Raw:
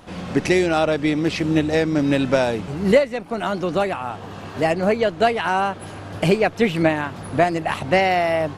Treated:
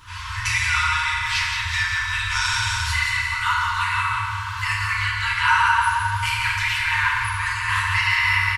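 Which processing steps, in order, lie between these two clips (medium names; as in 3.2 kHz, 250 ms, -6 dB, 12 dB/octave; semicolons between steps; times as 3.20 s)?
2.30–2.91 s: peaking EQ 6.8 kHz +11.5 dB 1.7 oct; feedback delay 176 ms, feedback 55%, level -6 dB; peak limiter -10.5 dBFS, peak gain reduction 7.5 dB; FFT band-reject 110–910 Hz; FDN reverb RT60 1.9 s, low-frequency decay 1.45×, high-frequency decay 0.45×, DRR -8 dB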